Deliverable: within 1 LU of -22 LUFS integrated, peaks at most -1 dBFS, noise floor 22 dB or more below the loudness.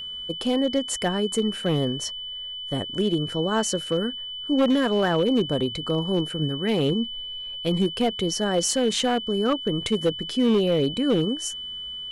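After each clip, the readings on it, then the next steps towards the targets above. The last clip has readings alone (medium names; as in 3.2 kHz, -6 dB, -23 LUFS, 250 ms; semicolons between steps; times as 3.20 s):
clipped samples 1.3%; clipping level -15.0 dBFS; steady tone 3 kHz; tone level -32 dBFS; loudness -24.5 LUFS; peak level -15.0 dBFS; loudness target -22.0 LUFS
-> clip repair -15 dBFS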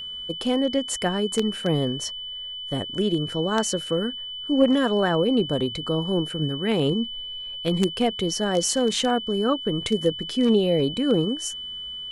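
clipped samples 0.0%; steady tone 3 kHz; tone level -32 dBFS
-> band-stop 3 kHz, Q 30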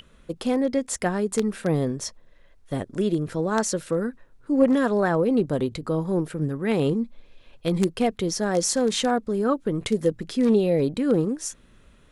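steady tone not found; loudness -24.5 LUFS; peak level -6.0 dBFS; loudness target -22.0 LUFS
-> trim +2.5 dB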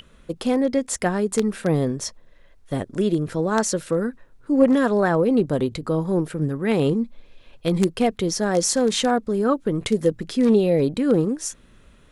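loudness -22.0 LUFS; peak level -3.5 dBFS; noise floor -52 dBFS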